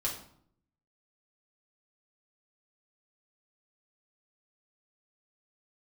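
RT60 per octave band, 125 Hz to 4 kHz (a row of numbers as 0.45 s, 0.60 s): 0.95 s, 0.85 s, 0.65 s, 0.65 s, 0.50 s, 0.45 s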